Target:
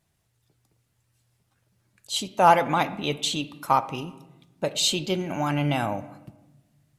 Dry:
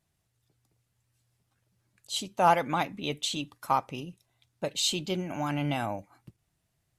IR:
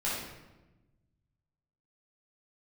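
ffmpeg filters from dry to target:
-filter_complex "[0:a]asplit=2[s0][s1];[s1]highpass=120[s2];[1:a]atrim=start_sample=2205,lowpass=3600[s3];[s2][s3]afir=irnorm=-1:irlink=0,volume=0.119[s4];[s0][s4]amix=inputs=2:normalize=0,volume=1.68"

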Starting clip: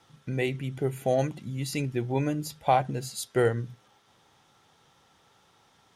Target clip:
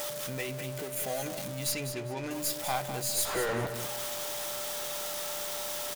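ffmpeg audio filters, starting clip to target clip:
-filter_complex "[0:a]aeval=exprs='val(0)+0.5*0.0282*sgn(val(0))':c=same,lowshelf=f=220:g=-10,bandreject=f=50:t=h:w=6,bandreject=f=100:t=h:w=6,bandreject=f=150:t=h:w=6,acrossover=split=840[s0][s1];[s0]alimiter=level_in=1.33:limit=0.0631:level=0:latency=1,volume=0.75[s2];[s2][s1]amix=inputs=2:normalize=0,asettb=1/sr,asplit=3[s3][s4][s5];[s3]atrim=end=0.404[s6];[s4]atrim=start=0.4:end=1.05,asetpts=PTS-STARTPTS,afade=t=in:d=0.004:c=qsin,afade=t=out:st=0.646:d=0.004:c=qsin,acompressor=threshold=0.0316:ratio=6[s7];[s5]atrim=start=1.046[s8];[s6][s7]acrossfade=d=0.004:c1=hsin:c2=qsin[s9];[s9][s8]acrossfade=d=0.004:c1=qsin:c2=hsin,crystalizer=i=2:c=0,aeval=exprs='clip(val(0),-1,0.0531)':c=same,asettb=1/sr,asplit=3[s10][s11][s12];[s10]atrim=end=1.724[s13];[s11]atrim=start=1.72:end=2.31,asetpts=PTS-STARTPTS,afade=t=in:d=0.004:c=qsin,afade=t=out:st=0.586:d=0.004:c=qsin,adynamicsmooth=sensitivity=5:basefreq=2500[s14];[s12]atrim=start=2.306[s15];[s13][s14]acrossfade=d=0.004:c1=hsin:c2=qsin[s16];[s16][s15]acrossfade=d=0.004:c1=qsin:c2=hsin,asettb=1/sr,asplit=3[s17][s18][s19];[s17]atrim=end=3.254[s20];[s18]atrim=start=3.25:end=3.67,asetpts=PTS-STARTPTS,afade=t=in:d=0.004:c=qsin,afade=t=out:st=0.416:d=0.004:c=qsin,asplit=2[s21][s22];[s22]highpass=f=720:p=1,volume=63.1,asoftclip=type=tanh:threshold=0.133[s23];[s21][s23]amix=inputs=2:normalize=0,lowpass=f=1100:p=1,volume=0.501[s24];[s19]atrim=start=3.666[s25];[s20][s24]acrossfade=d=0.004:c1=hsin:c2=qsin[s26];[s26][s25]acrossfade=d=0.004:c1=qsin:c2=hsin,aeval=exprs='val(0)+0.0282*sin(2*PI*590*n/s)':c=same,asplit=2[s27][s28];[s28]adelay=16,volume=0.211[s29];[s27][s29]amix=inputs=2:normalize=0,asplit=2[s30][s31];[s31]aecho=0:1:201|402|603:0.335|0.0804|0.0193[s32];[s30][s32]amix=inputs=2:normalize=0,volume=0.562"

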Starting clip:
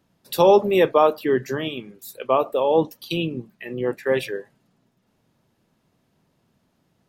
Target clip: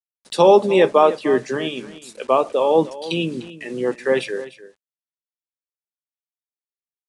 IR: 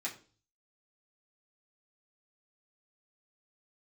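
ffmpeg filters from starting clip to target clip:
-filter_complex "[0:a]highpass=f=150:w=0.5412,highpass=f=150:w=1.3066,acrusher=bits=7:mix=0:aa=0.000001,asplit=2[s0][s1];[s1]aecho=0:1:300:0.158[s2];[s0][s2]amix=inputs=2:normalize=0,aresample=22050,aresample=44100,volume=1.33"

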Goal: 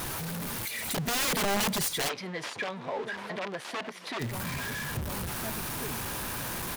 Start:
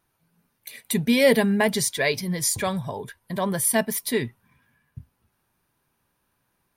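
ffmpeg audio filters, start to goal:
-filter_complex "[0:a]aeval=exprs='val(0)+0.5*0.0355*sgn(val(0))':c=same,asplit=2[s0][s1];[s1]adelay=1691,volume=0.126,highshelf=f=4000:g=-38[s2];[s0][s2]amix=inputs=2:normalize=0,aeval=exprs='(mod(7.08*val(0)+1,2)-1)/7.08':c=same,acompressor=threshold=0.0501:ratio=4,asplit=3[s3][s4][s5];[s3]afade=t=out:st=2.08:d=0.02[s6];[s4]highpass=360,lowpass=3100,afade=t=in:st=2.08:d=0.02,afade=t=out:st=4.19:d=0.02[s7];[s5]afade=t=in:st=4.19:d=0.02[s8];[s6][s7][s8]amix=inputs=3:normalize=0,alimiter=limit=0.0708:level=0:latency=1:release=201"

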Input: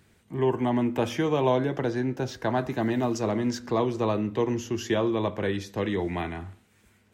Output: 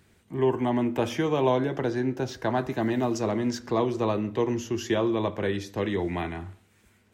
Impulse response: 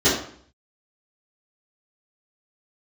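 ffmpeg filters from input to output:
-filter_complex "[0:a]asplit=2[s0][s1];[1:a]atrim=start_sample=2205[s2];[s1][s2]afir=irnorm=-1:irlink=0,volume=0.0106[s3];[s0][s3]amix=inputs=2:normalize=0"

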